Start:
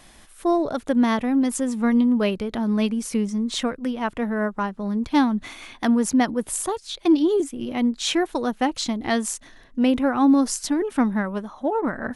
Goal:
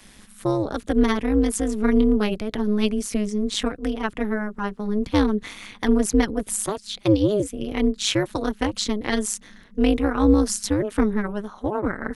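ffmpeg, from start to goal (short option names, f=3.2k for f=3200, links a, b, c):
-filter_complex "[0:a]acrossover=split=330|3000[a][b][c];[b]acompressor=threshold=-21dB:ratio=6[d];[a][d][c]amix=inputs=3:normalize=0,equalizer=f=680:t=o:w=0.87:g=-6.5,tremolo=f=210:d=0.974,volume=5.5dB"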